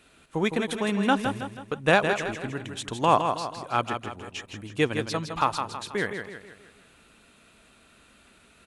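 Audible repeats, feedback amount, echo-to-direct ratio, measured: 5, 45%, -6.0 dB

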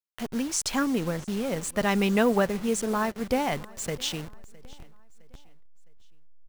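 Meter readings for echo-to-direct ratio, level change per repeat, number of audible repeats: -22.5 dB, -7.5 dB, 2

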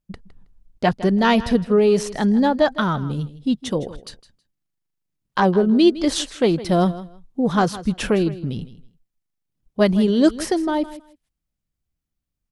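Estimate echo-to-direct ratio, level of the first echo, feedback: -16.0 dB, -16.0 dB, 18%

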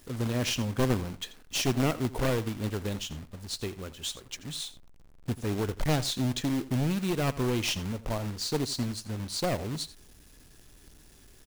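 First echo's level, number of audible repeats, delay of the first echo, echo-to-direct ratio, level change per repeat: -17.0 dB, 1, 85 ms, -17.0 dB, no regular repeats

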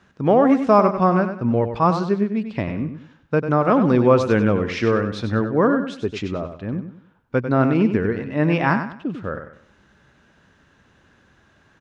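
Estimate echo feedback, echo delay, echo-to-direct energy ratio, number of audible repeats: 32%, 96 ms, -8.5 dB, 3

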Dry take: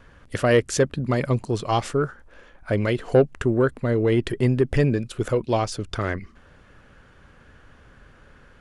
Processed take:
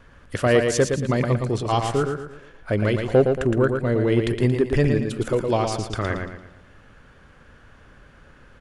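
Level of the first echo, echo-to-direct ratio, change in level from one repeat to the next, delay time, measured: -5.5 dB, -5.0 dB, -8.0 dB, 114 ms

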